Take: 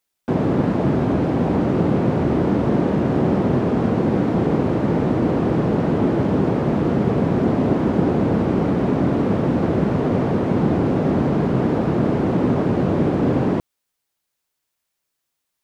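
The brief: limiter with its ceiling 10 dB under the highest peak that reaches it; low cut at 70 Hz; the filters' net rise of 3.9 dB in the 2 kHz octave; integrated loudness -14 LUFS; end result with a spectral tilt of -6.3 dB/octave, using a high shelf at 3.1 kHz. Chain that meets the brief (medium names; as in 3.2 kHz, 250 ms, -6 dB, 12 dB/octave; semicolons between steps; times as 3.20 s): high-pass 70 Hz; peaking EQ 2 kHz +7 dB; treble shelf 3.1 kHz -6 dB; trim +8.5 dB; peak limiter -5.5 dBFS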